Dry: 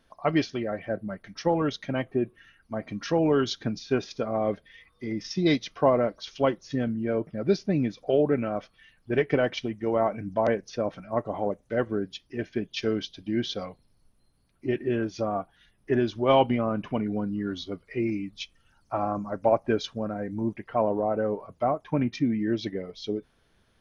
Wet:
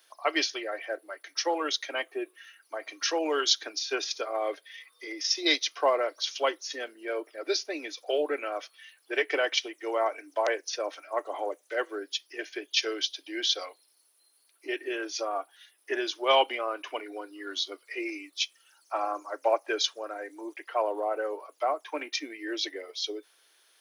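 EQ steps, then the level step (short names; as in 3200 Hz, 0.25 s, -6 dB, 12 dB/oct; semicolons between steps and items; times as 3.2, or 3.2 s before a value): steep high-pass 300 Hz 72 dB/oct; tilt +4.5 dB/oct; 0.0 dB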